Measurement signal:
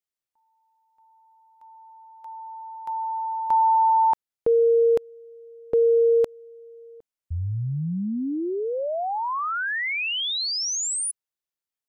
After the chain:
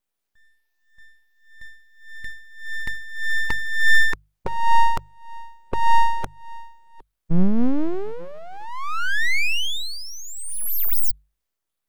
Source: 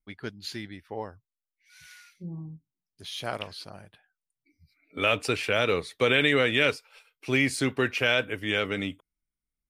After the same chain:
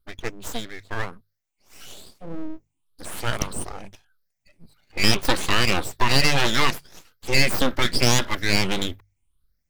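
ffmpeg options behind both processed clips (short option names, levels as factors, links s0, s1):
-filter_complex "[0:a]afftfilt=real='re*pow(10,20/40*sin(2*PI*(0.62*log(max(b,1)*sr/1024/100)/log(2)-(1.7)*(pts-256)/sr)))':imag='im*pow(10,20/40*sin(2*PI*(0.62*log(max(b,1)*sr/1024/100)/log(2)-(1.7)*(pts-256)/sr)))':win_size=1024:overlap=0.75,asubboost=boost=4:cutoff=110,asplit=2[s0][s1];[s1]acompressor=threshold=0.0316:ratio=6:attack=50:release=27:detection=peak,volume=1.33[s2];[s0][s2]amix=inputs=2:normalize=0,aeval=exprs='abs(val(0))':c=same,bandreject=f=50:t=h:w=6,bandreject=f=100:t=h:w=6,bandreject=f=150:t=h:w=6,volume=0.841"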